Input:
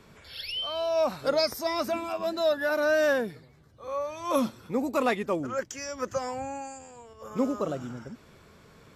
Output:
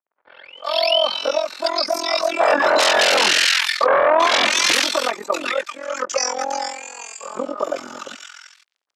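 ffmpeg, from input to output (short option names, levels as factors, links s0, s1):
-filter_complex "[0:a]agate=range=0.316:threshold=0.00316:ratio=16:detection=peak,highshelf=f=3600:g=8.5,aecho=1:1:3.4:0.45,acompressor=threshold=0.0447:ratio=5,aeval=exprs='sgn(val(0))*max(abs(val(0))-0.00168,0)':c=same,tremolo=f=43:d=0.919,asettb=1/sr,asplit=3[s0][s1][s2];[s0]atrim=end=2.404[s3];[s1]atrim=start=2.4:end=4.72,asetpts=PTS-STARTPTS,afade=t=in:d=0.004:c=qsin,afade=t=out:st=2.316:d=0.004:c=qsin,aeval=exprs='0.0841*sin(PI/2*7.94*val(0)/0.0841)':c=same[s4];[s2]atrim=start=4.716[s5];[s3][s4]acrossfade=d=0.004:c1=hsin:c2=qsin[s6];[s6][s5]acrossfade=d=0.004:c1=qsin:c2=hsin,highpass=640,lowpass=5400,acrossover=split=1500[s7][s8];[s8]adelay=390[s9];[s7][s9]amix=inputs=2:normalize=0,alimiter=level_in=15:limit=0.891:release=50:level=0:latency=1,volume=0.531"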